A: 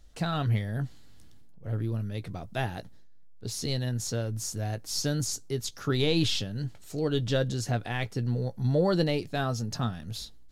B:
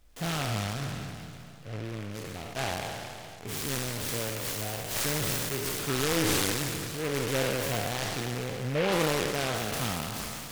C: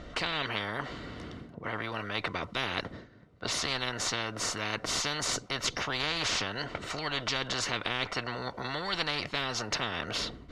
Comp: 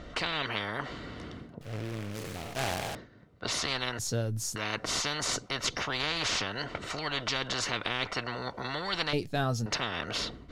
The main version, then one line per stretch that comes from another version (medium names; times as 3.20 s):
C
1.61–2.95 s: from B
3.99–4.56 s: from A
9.13–9.66 s: from A